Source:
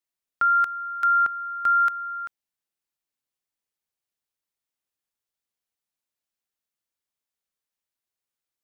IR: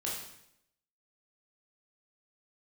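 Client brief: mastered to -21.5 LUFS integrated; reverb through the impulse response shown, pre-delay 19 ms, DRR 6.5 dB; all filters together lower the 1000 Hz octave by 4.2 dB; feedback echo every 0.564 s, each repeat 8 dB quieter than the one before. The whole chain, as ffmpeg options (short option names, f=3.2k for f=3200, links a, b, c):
-filter_complex "[0:a]equalizer=f=1k:t=o:g=-8,aecho=1:1:564|1128|1692|2256|2820:0.398|0.159|0.0637|0.0255|0.0102,asplit=2[a][b];[1:a]atrim=start_sample=2205,adelay=19[c];[b][c]afir=irnorm=-1:irlink=0,volume=-9.5dB[d];[a][d]amix=inputs=2:normalize=0,volume=4dB"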